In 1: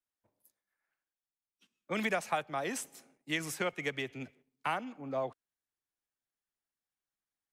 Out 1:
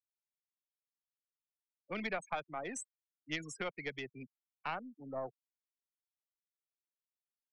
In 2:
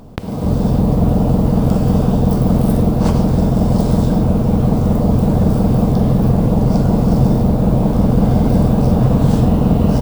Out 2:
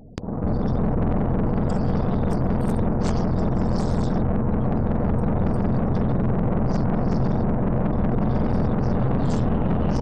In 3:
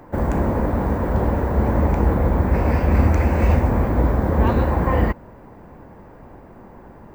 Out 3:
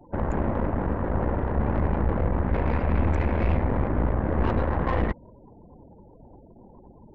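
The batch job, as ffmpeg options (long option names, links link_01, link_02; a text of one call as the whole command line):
ffmpeg -i in.wav -af "afftfilt=real='re*gte(hypot(re,im),0.0178)':imag='im*gte(hypot(re,im),0.0178)':win_size=1024:overlap=0.75,aeval=exprs='(tanh(7.08*val(0)+0.75)-tanh(0.75))/7.08':channel_layout=same,lowpass=frequency=7400:width_type=q:width=2.2,volume=-1.5dB" out.wav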